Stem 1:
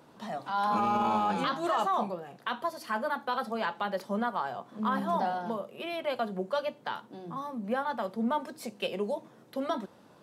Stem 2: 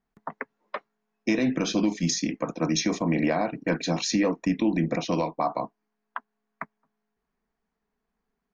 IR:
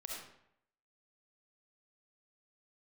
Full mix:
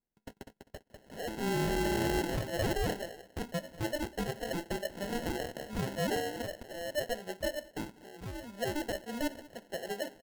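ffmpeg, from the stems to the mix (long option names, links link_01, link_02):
-filter_complex "[0:a]bandpass=frequency=750:width_type=q:width=0.91:csg=0,adelay=900,volume=-2dB,asplit=2[link_01][link_02];[link_02]volume=-21.5dB[link_03];[1:a]acompressor=threshold=-26dB:ratio=6,volume=-12.5dB,asplit=3[link_04][link_05][link_06];[link_04]atrim=end=2.44,asetpts=PTS-STARTPTS,afade=type=out:start_time=2.436:duration=0.004:curve=hsin[link_07];[link_05]atrim=start=2.44:end=4.95,asetpts=PTS-STARTPTS,volume=0[link_08];[link_06]atrim=start=4.95,asetpts=PTS-STARTPTS,afade=type=in:duration=0.004:curve=hsin[link_09];[link_07][link_08][link_09]concat=n=3:v=0:a=1,asplit=2[link_10][link_11];[link_11]volume=-6.5dB[link_12];[link_03][link_12]amix=inputs=2:normalize=0,aecho=0:1:198|396|594:1|0.19|0.0361[link_13];[link_01][link_10][link_13]amix=inputs=3:normalize=0,equalizer=frequency=6100:width_type=o:width=0.77:gain=10.5,acrusher=samples=37:mix=1:aa=0.000001"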